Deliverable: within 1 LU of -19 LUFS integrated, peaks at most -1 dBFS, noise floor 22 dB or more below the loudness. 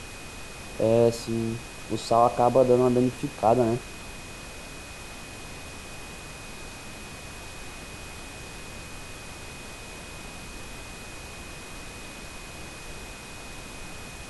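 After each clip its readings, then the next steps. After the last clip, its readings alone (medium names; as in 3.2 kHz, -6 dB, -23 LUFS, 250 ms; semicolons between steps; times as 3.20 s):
steady tone 2.5 kHz; tone level -47 dBFS; noise floor -41 dBFS; noise floor target -46 dBFS; loudness -24.0 LUFS; peak level -7.5 dBFS; loudness target -19.0 LUFS
-> band-stop 2.5 kHz, Q 30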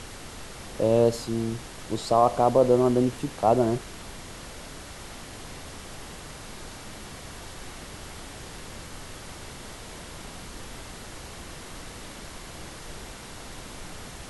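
steady tone not found; noise floor -42 dBFS; noise floor target -46 dBFS
-> noise print and reduce 6 dB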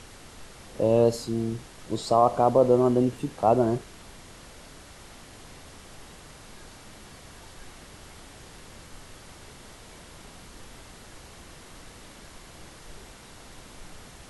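noise floor -48 dBFS; loudness -24.0 LUFS; peak level -7.5 dBFS; loudness target -19.0 LUFS
-> trim +5 dB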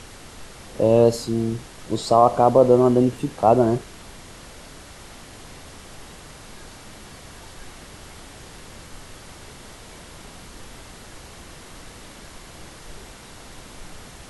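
loudness -18.5 LUFS; peak level -2.5 dBFS; noise floor -43 dBFS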